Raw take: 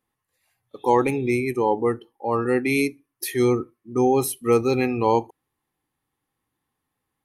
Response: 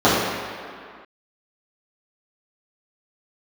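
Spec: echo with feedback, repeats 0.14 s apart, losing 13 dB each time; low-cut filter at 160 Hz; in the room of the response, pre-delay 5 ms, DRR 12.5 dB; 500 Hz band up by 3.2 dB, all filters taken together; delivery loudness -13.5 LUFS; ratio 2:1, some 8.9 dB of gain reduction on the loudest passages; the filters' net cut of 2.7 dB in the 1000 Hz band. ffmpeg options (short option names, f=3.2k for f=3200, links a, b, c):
-filter_complex "[0:a]highpass=160,equalizer=f=500:t=o:g=5,equalizer=f=1k:t=o:g=-5,acompressor=threshold=-27dB:ratio=2,aecho=1:1:140|280|420:0.224|0.0493|0.0108,asplit=2[a][b];[1:a]atrim=start_sample=2205,adelay=5[c];[b][c]afir=irnorm=-1:irlink=0,volume=-39dB[d];[a][d]amix=inputs=2:normalize=0,volume=13dB"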